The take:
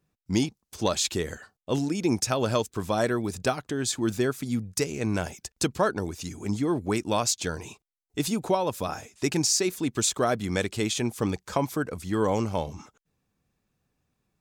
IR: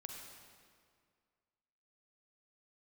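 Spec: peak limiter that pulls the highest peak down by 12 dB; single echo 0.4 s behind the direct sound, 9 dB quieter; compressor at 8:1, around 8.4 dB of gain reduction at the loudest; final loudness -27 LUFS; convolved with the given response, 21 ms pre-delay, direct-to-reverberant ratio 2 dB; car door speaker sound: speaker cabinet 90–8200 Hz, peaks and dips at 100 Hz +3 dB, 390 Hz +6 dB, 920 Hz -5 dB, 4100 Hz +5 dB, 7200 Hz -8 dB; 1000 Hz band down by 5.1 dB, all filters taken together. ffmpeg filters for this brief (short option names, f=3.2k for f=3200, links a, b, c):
-filter_complex "[0:a]equalizer=f=1k:t=o:g=-4.5,acompressor=threshold=-29dB:ratio=8,alimiter=level_in=3.5dB:limit=-24dB:level=0:latency=1,volume=-3.5dB,aecho=1:1:400:0.355,asplit=2[a][b];[1:a]atrim=start_sample=2205,adelay=21[c];[b][c]afir=irnorm=-1:irlink=0,volume=1.5dB[d];[a][d]amix=inputs=2:normalize=0,highpass=90,equalizer=f=100:t=q:w=4:g=3,equalizer=f=390:t=q:w=4:g=6,equalizer=f=920:t=q:w=4:g=-5,equalizer=f=4.1k:t=q:w=4:g=5,equalizer=f=7.2k:t=q:w=4:g=-8,lowpass=f=8.2k:w=0.5412,lowpass=f=8.2k:w=1.3066,volume=7.5dB"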